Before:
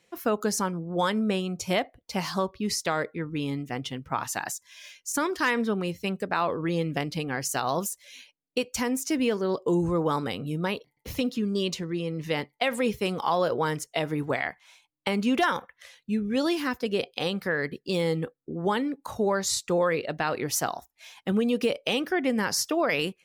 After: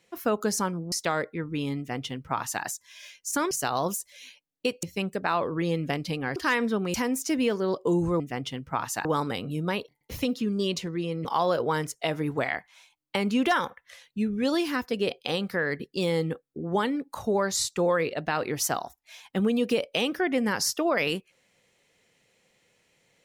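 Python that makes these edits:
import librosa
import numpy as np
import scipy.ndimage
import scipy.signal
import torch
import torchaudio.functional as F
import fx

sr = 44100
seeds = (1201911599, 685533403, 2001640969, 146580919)

y = fx.edit(x, sr, fx.cut(start_s=0.92, length_s=1.81),
    fx.duplicate(start_s=3.59, length_s=0.85, to_s=10.01),
    fx.swap(start_s=5.32, length_s=0.58, other_s=7.43, other_length_s=1.32),
    fx.cut(start_s=12.21, length_s=0.96), tone=tone)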